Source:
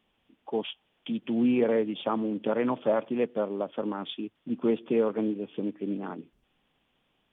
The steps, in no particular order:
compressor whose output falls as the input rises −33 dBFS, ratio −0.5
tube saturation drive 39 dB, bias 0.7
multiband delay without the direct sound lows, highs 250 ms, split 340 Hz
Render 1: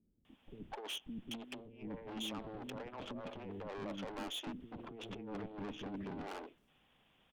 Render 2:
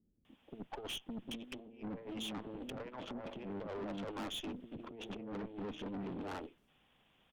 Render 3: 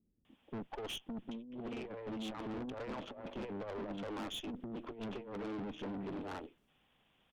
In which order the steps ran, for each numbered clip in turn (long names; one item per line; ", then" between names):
compressor whose output falls as the input rises, then tube saturation, then multiband delay without the direct sound
compressor whose output falls as the input rises, then multiband delay without the direct sound, then tube saturation
multiband delay without the direct sound, then compressor whose output falls as the input rises, then tube saturation